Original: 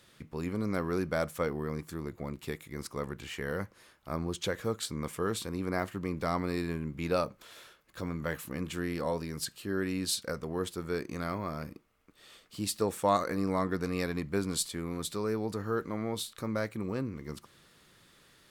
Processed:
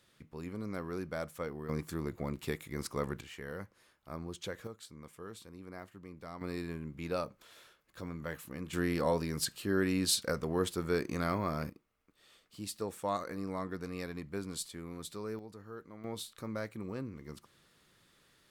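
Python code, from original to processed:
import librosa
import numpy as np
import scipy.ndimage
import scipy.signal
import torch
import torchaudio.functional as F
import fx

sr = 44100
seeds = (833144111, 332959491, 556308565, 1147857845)

y = fx.gain(x, sr, db=fx.steps((0.0, -7.5), (1.69, 1.0), (3.21, -8.0), (4.67, -15.0), (6.41, -6.0), (8.73, 2.0), (11.7, -8.0), (15.39, -15.0), (16.04, -6.0)))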